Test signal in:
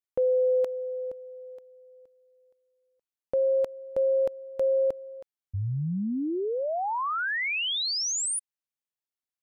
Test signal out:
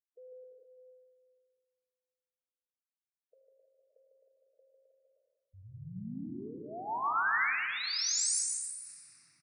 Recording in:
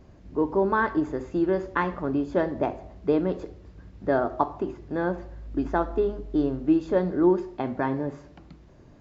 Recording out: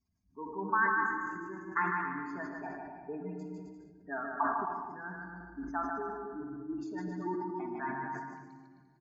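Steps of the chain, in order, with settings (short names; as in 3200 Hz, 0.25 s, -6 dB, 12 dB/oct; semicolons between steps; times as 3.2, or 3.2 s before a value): per-bin expansion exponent 1.5; HPF 520 Hz 6 dB/oct; spectral gate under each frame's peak -25 dB strong; LPF 3000 Hz 6 dB/oct; reverb removal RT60 2 s; high shelf 2200 Hz +12 dB; fixed phaser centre 1300 Hz, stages 4; on a send: bouncing-ball echo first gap 0.15 s, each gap 0.75×, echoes 5; on the sum: shoebox room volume 3100 m³, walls mixed, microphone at 1.6 m; sustainer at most 42 dB/s; gain -5.5 dB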